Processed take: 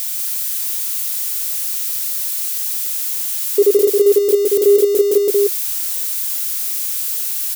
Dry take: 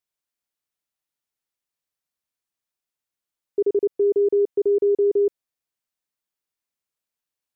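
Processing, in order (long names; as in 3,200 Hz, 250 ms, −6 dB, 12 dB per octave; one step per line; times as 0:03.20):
spike at every zero crossing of −24.5 dBFS
parametric band 510 Hz +4 dB 1.2 octaves
notch filter 360 Hz, Q 12
single-tap delay 189 ms −4.5 dB
level +6.5 dB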